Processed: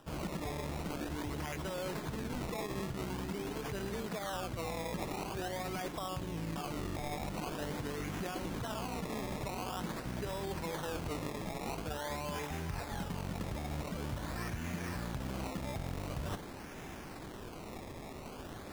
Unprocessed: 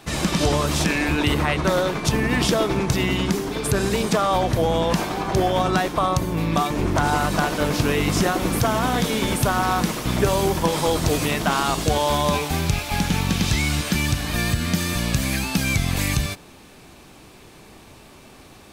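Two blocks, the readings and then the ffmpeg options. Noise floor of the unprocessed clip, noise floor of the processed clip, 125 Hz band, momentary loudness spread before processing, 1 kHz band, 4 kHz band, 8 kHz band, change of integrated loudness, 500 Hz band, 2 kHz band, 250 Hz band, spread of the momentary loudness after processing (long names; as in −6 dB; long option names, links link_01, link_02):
−46 dBFS, −47 dBFS, −17.5 dB, 3 LU, −18.0 dB, −20.0 dB, −20.0 dB, −18.5 dB, −17.5 dB, −19.0 dB, −17.0 dB, 8 LU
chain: -af "bandreject=frequency=1200:width=14,alimiter=limit=-14.5dB:level=0:latency=1:release=126,areverse,acompressor=threshold=-37dB:ratio=6,areverse,acrusher=samples=20:mix=1:aa=0.000001:lfo=1:lforange=20:lforate=0.46"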